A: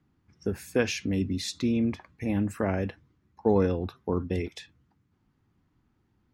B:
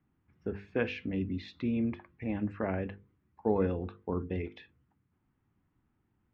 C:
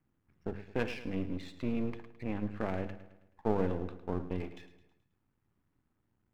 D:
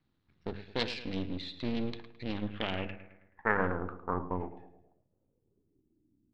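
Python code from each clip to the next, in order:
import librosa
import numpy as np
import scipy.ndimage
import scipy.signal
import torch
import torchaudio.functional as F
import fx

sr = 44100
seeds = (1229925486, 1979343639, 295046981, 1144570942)

y1 = scipy.signal.sosfilt(scipy.signal.butter(4, 3000.0, 'lowpass', fs=sr, output='sos'), x)
y1 = fx.hum_notches(y1, sr, base_hz=50, count=10)
y1 = F.gain(torch.from_numpy(y1), -4.5).numpy()
y2 = np.where(y1 < 0.0, 10.0 ** (-12.0 / 20.0) * y1, y1)
y2 = fx.echo_feedback(y2, sr, ms=107, feedback_pct=48, wet_db=-13.5)
y3 = fx.self_delay(y2, sr, depth_ms=0.71)
y3 = fx.filter_sweep_lowpass(y3, sr, from_hz=4000.0, to_hz=290.0, start_s=2.3, end_s=6.15, q=5.4)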